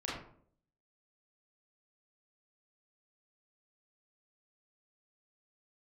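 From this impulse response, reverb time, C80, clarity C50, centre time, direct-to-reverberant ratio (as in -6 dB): 0.60 s, 6.5 dB, 2.0 dB, 52 ms, -6.5 dB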